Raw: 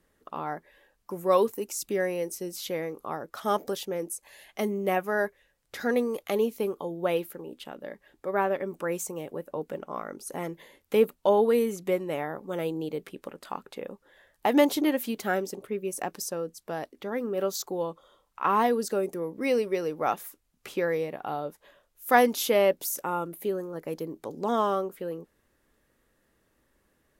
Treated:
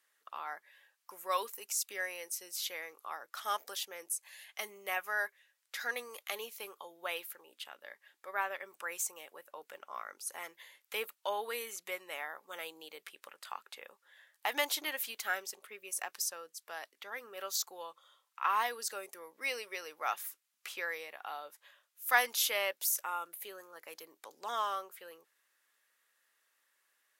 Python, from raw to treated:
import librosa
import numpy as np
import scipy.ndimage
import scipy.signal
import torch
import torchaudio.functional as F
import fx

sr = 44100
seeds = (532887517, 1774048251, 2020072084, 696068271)

y = scipy.signal.sosfilt(scipy.signal.butter(2, 1400.0, 'highpass', fs=sr, output='sos'), x)